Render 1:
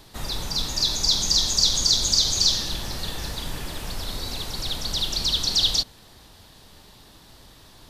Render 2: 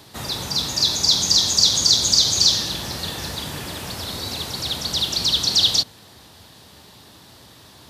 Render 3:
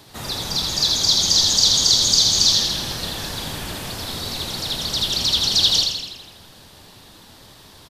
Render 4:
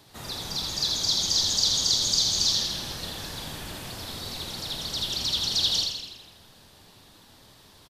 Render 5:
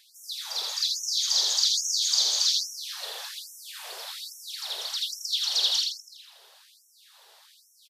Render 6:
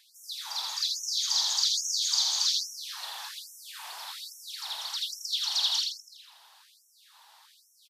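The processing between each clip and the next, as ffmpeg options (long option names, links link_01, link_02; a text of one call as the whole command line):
ffmpeg -i in.wav -af "highpass=frequency=75:width=0.5412,highpass=frequency=75:width=1.3066,volume=4dB" out.wav
ffmpeg -i in.wav -filter_complex "[0:a]asplit=9[link_01][link_02][link_03][link_04][link_05][link_06][link_07][link_08][link_09];[link_02]adelay=82,afreqshift=-92,volume=-4dB[link_10];[link_03]adelay=164,afreqshift=-184,volume=-8.9dB[link_11];[link_04]adelay=246,afreqshift=-276,volume=-13.8dB[link_12];[link_05]adelay=328,afreqshift=-368,volume=-18.6dB[link_13];[link_06]adelay=410,afreqshift=-460,volume=-23.5dB[link_14];[link_07]adelay=492,afreqshift=-552,volume=-28.4dB[link_15];[link_08]adelay=574,afreqshift=-644,volume=-33.3dB[link_16];[link_09]adelay=656,afreqshift=-736,volume=-38.2dB[link_17];[link_01][link_10][link_11][link_12][link_13][link_14][link_15][link_16][link_17]amix=inputs=9:normalize=0,volume=-1dB" out.wav
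ffmpeg -i in.wav -filter_complex "[0:a]asplit=2[link_01][link_02];[link_02]adelay=48,volume=-11.5dB[link_03];[link_01][link_03]amix=inputs=2:normalize=0,volume=-8dB" out.wav
ffmpeg -i in.wav -af "afftfilt=real='re*gte(b*sr/1024,370*pow(5500/370,0.5+0.5*sin(2*PI*1.2*pts/sr)))':imag='im*gte(b*sr/1024,370*pow(5500/370,0.5+0.5*sin(2*PI*1.2*pts/sr)))':win_size=1024:overlap=0.75" out.wav
ffmpeg -i in.wav -af "lowshelf=frequency=650:width_type=q:width=3:gain=-10.5,volume=-3dB" out.wav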